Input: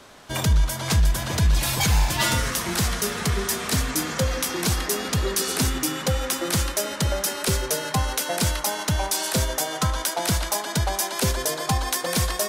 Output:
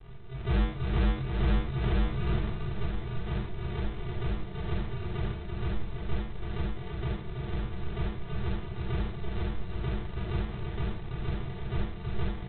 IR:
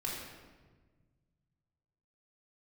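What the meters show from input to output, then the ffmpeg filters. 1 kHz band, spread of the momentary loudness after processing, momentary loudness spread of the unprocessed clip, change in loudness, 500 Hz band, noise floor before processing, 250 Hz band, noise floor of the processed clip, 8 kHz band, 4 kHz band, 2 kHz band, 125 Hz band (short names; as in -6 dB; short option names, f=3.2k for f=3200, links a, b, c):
-14.5 dB, 7 LU, 4 LU, -10.5 dB, -11.0 dB, -33 dBFS, -7.0 dB, -39 dBFS, under -40 dB, -20.0 dB, -14.5 dB, -6.0 dB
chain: -filter_complex "[0:a]aeval=exprs='val(0)+0.5*0.0237*sgn(val(0))':c=same,equalizer=f=330:w=0.4:g=-6.5,aresample=8000,acrusher=samples=30:mix=1:aa=0.000001,aresample=44100,aecho=1:1:333:0.501[a];[1:a]atrim=start_sample=2205,atrim=end_sample=3969[b];[a][b]afir=irnorm=-1:irlink=0,volume=-9dB"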